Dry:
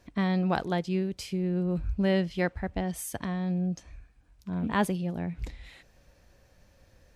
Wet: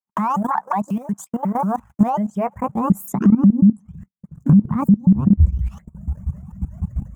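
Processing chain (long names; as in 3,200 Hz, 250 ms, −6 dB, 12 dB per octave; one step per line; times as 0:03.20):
pitch shifter swept by a sawtooth +8.5 semitones, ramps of 181 ms
log-companded quantiser 6 bits
high-pass filter sweep 910 Hz → 65 Hz, 0:01.74–0:05.60
drawn EQ curve 110 Hz 0 dB, 200 Hz +11 dB, 300 Hz −21 dB, 540 Hz −17 dB, 1,100 Hz −3 dB, 4,500 Hz −27 dB, 7,000 Hz −5 dB, 10,000 Hz −9 dB
downward compressor 6 to 1, threshold −38 dBFS, peak gain reduction 20 dB
reverb reduction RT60 1.3 s
tilt shelving filter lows +10 dB, about 900 Hz
noise gate −56 dBFS, range −51 dB
output level in coarse steps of 16 dB
boost into a limiter +33 dB
level −4.5 dB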